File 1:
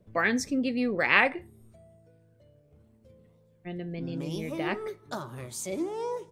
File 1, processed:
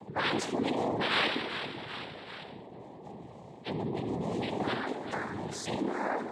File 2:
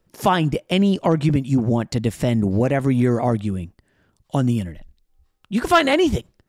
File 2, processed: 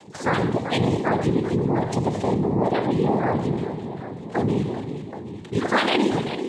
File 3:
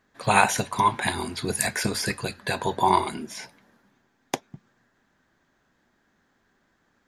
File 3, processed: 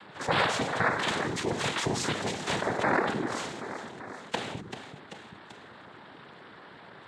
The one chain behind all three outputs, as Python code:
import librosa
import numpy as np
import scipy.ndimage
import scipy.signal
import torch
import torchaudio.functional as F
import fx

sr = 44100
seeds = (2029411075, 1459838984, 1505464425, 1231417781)

y = fx.spec_quant(x, sr, step_db=30)
y = scipy.signal.sosfilt(scipy.signal.butter(2, 4400.0, 'lowpass', fs=sr, output='sos'), y)
y = fx.peak_eq(y, sr, hz=360.0, db=2.0, octaves=0.77)
y = fx.echo_feedback(y, sr, ms=388, feedback_pct=41, wet_db=-18)
y = fx.rev_gated(y, sr, seeds[0], gate_ms=270, shape='falling', drr_db=7.5)
y = fx.noise_vocoder(y, sr, seeds[1], bands=6)
y = fx.env_flatten(y, sr, amount_pct=50)
y = y * 10.0 ** (-7.0 / 20.0)